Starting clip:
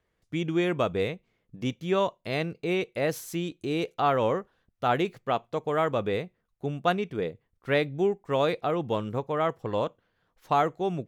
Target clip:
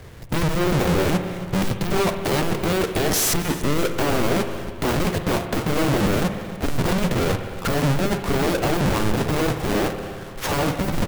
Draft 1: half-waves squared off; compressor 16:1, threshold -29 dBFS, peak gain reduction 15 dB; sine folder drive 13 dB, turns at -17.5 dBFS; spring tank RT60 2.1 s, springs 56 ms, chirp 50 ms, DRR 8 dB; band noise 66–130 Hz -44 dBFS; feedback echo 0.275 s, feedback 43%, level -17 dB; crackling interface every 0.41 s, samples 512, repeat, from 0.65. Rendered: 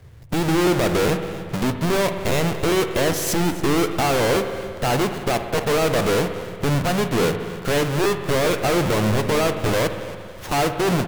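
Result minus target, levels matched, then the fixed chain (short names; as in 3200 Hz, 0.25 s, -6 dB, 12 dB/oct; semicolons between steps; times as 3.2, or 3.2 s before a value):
sine folder: distortion -33 dB
half-waves squared off; compressor 16:1, threshold -29 dBFS, peak gain reduction 15 dB; sine folder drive 23 dB, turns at -17.5 dBFS; spring tank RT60 2.1 s, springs 56 ms, chirp 50 ms, DRR 8 dB; band noise 66–130 Hz -44 dBFS; feedback echo 0.275 s, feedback 43%, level -17 dB; crackling interface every 0.41 s, samples 512, repeat, from 0.65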